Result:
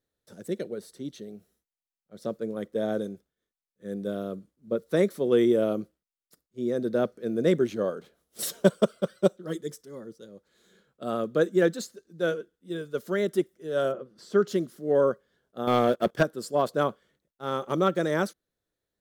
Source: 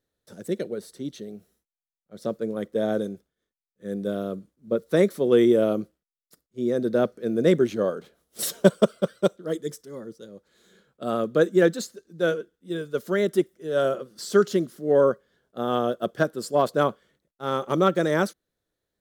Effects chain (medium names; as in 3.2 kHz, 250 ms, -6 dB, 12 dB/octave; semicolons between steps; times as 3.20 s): 9.09–9.64 s: comb 5.4 ms, depth 61%; 13.91–14.47 s: low-pass 1.1 kHz -> 2 kHz 6 dB/octave; 15.67–16.23 s: waveshaping leveller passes 2; trim -3.5 dB